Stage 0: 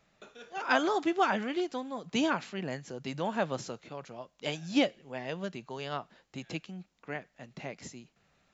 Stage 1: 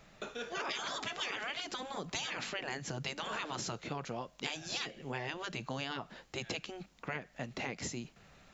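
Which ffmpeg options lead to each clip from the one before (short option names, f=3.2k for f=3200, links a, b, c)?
-af "afftfilt=real='re*lt(hypot(re,im),0.0562)':imag='im*lt(hypot(re,im),0.0562)':win_size=1024:overlap=0.75,lowshelf=f=61:g=7,acompressor=threshold=-44dB:ratio=6,volume=9dB"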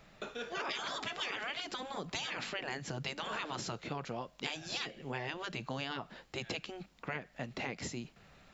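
-af "equalizer=f=6.4k:w=3.6:g=-5"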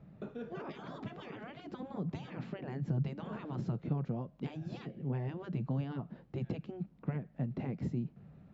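-af "bandpass=f=150:t=q:w=1.5:csg=0,volume=11.5dB"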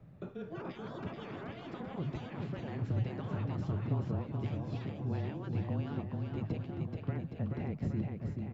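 -af "afreqshift=-24,aecho=1:1:430|817|1165|1479|1761:0.631|0.398|0.251|0.158|0.1"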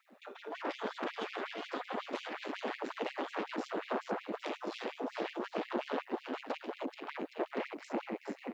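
-af "aeval=exprs='0.075*(cos(1*acos(clip(val(0)/0.075,-1,1)))-cos(1*PI/2))+0.0188*(cos(3*acos(clip(val(0)/0.075,-1,1)))-cos(3*PI/2))+0.0075*(cos(5*acos(clip(val(0)/0.075,-1,1)))-cos(5*PI/2))+0.0168*(cos(6*acos(clip(val(0)/0.075,-1,1)))-cos(6*PI/2))':c=same,asoftclip=type=tanh:threshold=-28dB,afftfilt=real='re*gte(b*sr/1024,210*pow(2100/210,0.5+0.5*sin(2*PI*5.5*pts/sr)))':imag='im*gte(b*sr/1024,210*pow(2100/210,0.5+0.5*sin(2*PI*5.5*pts/sr)))':win_size=1024:overlap=0.75,volume=10dB"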